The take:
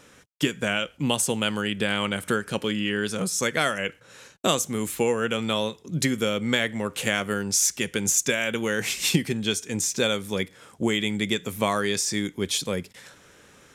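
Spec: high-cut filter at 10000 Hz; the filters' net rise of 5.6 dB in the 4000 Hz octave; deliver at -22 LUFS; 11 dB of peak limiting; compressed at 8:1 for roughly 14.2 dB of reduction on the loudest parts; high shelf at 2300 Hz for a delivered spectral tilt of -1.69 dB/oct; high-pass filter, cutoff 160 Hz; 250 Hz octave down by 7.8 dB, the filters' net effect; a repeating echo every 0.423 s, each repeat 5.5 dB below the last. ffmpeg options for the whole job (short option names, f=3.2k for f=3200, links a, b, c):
-af "highpass=160,lowpass=10k,equalizer=f=250:t=o:g=-9,highshelf=f=2.3k:g=5,equalizer=f=4k:t=o:g=3,acompressor=threshold=-29dB:ratio=8,alimiter=limit=-23dB:level=0:latency=1,aecho=1:1:423|846|1269|1692|2115|2538|2961:0.531|0.281|0.149|0.079|0.0419|0.0222|0.0118,volume=11.5dB"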